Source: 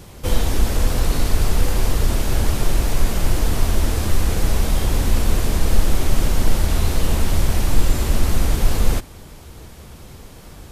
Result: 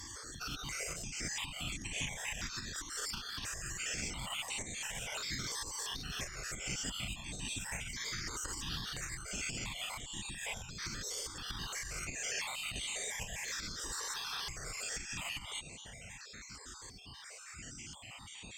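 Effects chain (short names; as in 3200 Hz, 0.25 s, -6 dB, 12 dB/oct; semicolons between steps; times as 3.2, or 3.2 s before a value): random spectral dropouts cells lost 46%; in parallel at +2 dB: vocal rider 0.5 s; on the sum: speed mistake 78 rpm record played at 45 rpm; compressor 16:1, threshold -15 dBFS, peak gain reduction 17 dB; differentiator; limiter -30 dBFS, peak gain reduction 11 dB; tone controls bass +13 dB, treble -9 dB; notch 4000 Hz, Q 11; added harmonics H 2 -6 dB, 4 -13 dB, 6 -9 dB, 8 -11 dB, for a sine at -19 dBFS; step phaser 2.9 Hz 680–5100 Hz; gain +8.5 dB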